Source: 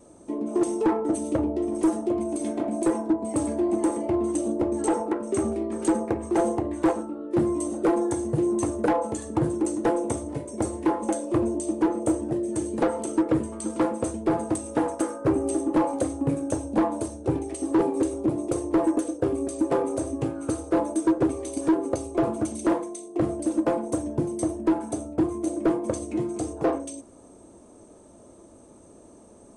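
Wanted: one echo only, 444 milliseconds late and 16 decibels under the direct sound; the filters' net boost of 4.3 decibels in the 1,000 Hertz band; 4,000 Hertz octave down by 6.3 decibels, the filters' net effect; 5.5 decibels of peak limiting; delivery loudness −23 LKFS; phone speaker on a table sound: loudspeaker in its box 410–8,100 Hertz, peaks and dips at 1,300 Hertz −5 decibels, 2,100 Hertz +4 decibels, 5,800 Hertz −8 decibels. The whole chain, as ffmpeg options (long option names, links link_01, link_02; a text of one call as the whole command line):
ffmpeg -i in.wav -af "equalizer=frequency=1000:width_type=o:gain=6.5,equalizer=frequency=4000:width_type=o:gain=-8,alimiter=limit=-15.5dB:level=0:latency=1,highpass=frequency=410:width=0.5412,highpass=frequency=410:width=1.3066,equalizer=frequency=1300:width_type=q:width=4:gain=-5,equalizer=frequency=2100:width_type=q:width=4:gain=4,equalizer=frequency=5800:width_type=q:width=4:gain=-8,lowpass=frequency=8100:width=0.5412,lowpass=frequency=8100:width=1.3066,aecho=1:1:444:0.158,volume=8dB" out.wav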